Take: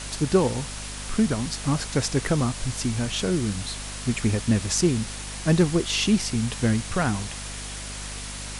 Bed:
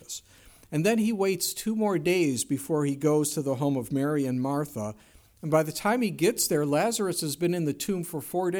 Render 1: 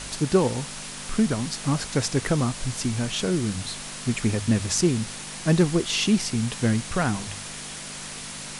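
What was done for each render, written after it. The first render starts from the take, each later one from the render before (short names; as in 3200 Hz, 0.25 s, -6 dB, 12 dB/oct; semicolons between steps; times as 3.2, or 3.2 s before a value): de-hum 50 Hz, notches 2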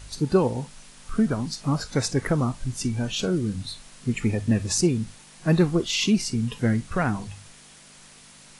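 noise print and reduce 13 dB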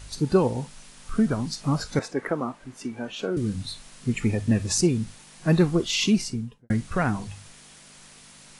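1.99–3.37 three-band isolator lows -23 dB, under 230 Hz, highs -13 dB, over 2500 Hz; 6.13–6.7 studio fade out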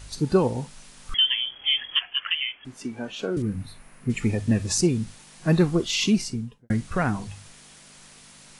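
1.14–2.65 inverted band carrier 3300 Hz; 3.42–4.1 band shelf 5100 Hz -13.5 dB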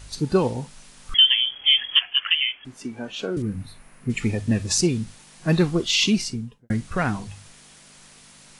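dynamic EQ 3500 Hz, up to +6 dB, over -39 dBFS, Q 0.75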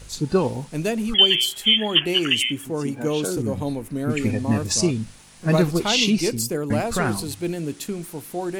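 add bed -0.5 dB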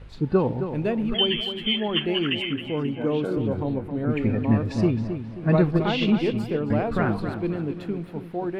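air absorption 450 m; darkening echo 0.267 s, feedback 42%, low-pass 4100 Hz, level -9 dB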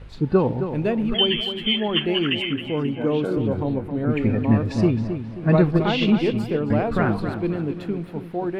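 gain +2.5 dB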